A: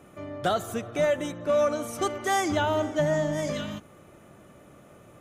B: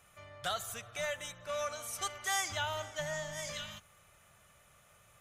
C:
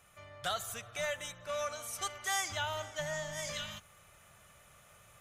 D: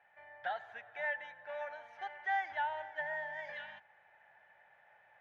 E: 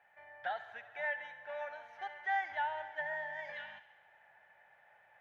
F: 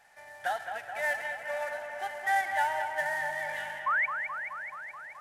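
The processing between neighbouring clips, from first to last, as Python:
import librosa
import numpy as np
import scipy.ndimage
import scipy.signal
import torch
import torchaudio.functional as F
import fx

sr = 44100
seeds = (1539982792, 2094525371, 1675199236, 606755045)

y1 = fx.tone_stack(x, sr, knobs='10-0-10')
y2 = fx.rider(y1, sr, range_db=10, speed_s=2.0)
y3 = fx.double_bandpass(y2, sr, hz=1200.0, octaves=1.0)
y3 = fx.air_absorb(y3, sr, metres=290.0)
y3 = y3 * librosa.db_to_amplitude(9.0)
y4 = fx.echo_wet_highpass(y3, sr, ms=69, feedback_pct=68, hz=1500.0, wet_db=-13.5)
y5 = fx.cvsd(y4, sr, bps=64000)
y5 = fx.spec_paint(y5, sr, seeds[0], shape='rise', start_s=3.86, length_s=0.2, low_hz=1000.0, high_hz=2400.0, level_db=-33.0)
y5 = fx.echo_bbd(y5, sr, ms=214, stages=4096, feedback_pct=73, wet_db=-7)
y5 = y5 * librosa.db_to_amplitude(6.5)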